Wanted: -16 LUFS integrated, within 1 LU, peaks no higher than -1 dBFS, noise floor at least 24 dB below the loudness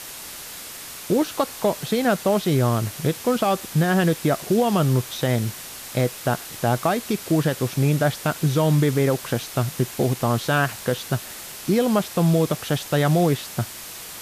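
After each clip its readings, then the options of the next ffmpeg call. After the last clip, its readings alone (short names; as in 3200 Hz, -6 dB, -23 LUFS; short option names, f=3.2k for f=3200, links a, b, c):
noise floor -37 dBFS; noise floor target -47 dBFS; loudness -22.5 LUFS; peak -9.0 dBFS; loudness target -16.0 LUFS
-> -af "afftdn=nr=10:nf=-37"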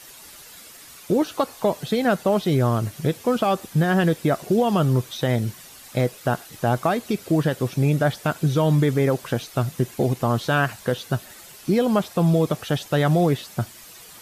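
noise floor -45 dBFS; noise floor target -47 dBFS
-> -af "afftdn=nr=6:nf=-45"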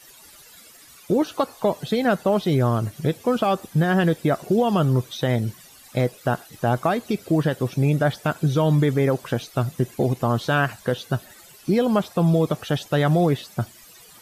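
noise floor -48 dBFS; loudness -22.5 LUFS; peak -9.0 dBFS; loudness target -16.0 LUFS
-> -af "volume=6.5dB"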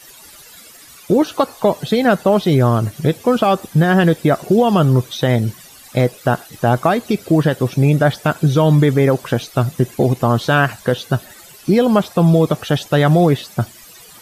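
loudness -16.0 LUFS; peak -2.5 dBFS; noise floor -42 dBFS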